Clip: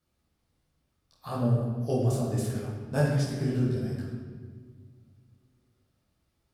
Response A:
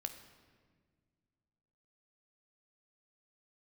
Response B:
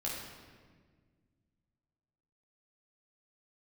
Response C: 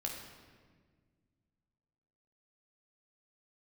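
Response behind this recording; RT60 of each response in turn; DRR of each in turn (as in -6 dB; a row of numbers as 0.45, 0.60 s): B; 1.7, 1.6, 1.6 s; 7.0, -5.5, -0.5 dB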